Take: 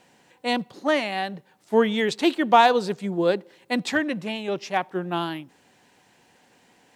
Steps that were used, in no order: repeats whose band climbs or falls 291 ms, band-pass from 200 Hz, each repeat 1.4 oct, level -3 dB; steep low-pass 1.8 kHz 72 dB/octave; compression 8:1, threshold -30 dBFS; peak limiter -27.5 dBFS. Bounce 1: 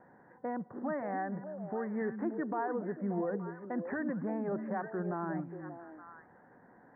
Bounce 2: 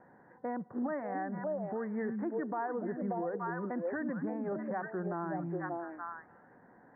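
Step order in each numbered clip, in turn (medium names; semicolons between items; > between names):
steep low-pass > compression > peak limiter > repeats whose band climbs or falls; repeats whose band climbs or falls > compression > steep low-pass > peak limiter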